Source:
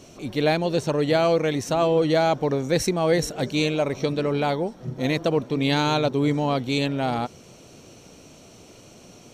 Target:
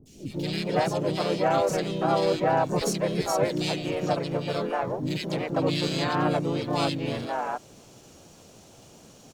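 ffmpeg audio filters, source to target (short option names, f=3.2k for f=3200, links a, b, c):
-filter_complex "[0:a]acrusher=bits=10:mix=0:aa=0.000001,acrossover=split=340|2100[a][b][c];[c]adelay=70[d];[b]adelay=310[e];[a][e][d]amix=inputs=3:normalize=0,asplit=4[f][g][h][i];[g]asetrate=35002,aresample=44100,atempo=1.25992,volume=-10dB[j];[h]asetrate=52444,aresample=44100,atempo=0.840896,volume=-1dB[k];[i]asetrate=88200,aresample=44100,atempo=0.5,volume=-15dB[l];[f][j][k][l]amix=inputs=4:normalize=0,volume=-5dB"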